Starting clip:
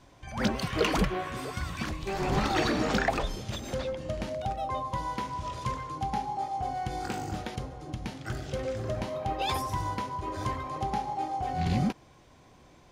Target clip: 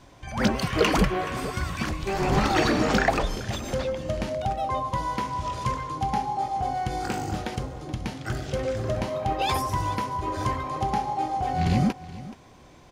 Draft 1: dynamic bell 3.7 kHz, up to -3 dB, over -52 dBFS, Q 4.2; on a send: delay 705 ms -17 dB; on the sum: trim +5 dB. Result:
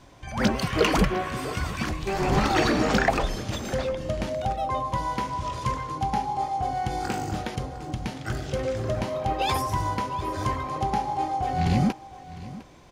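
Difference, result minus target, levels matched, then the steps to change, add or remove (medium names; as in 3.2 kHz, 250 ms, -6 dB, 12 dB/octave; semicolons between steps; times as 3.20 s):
echo 279 ms late
change: delay 426 ms -17 dB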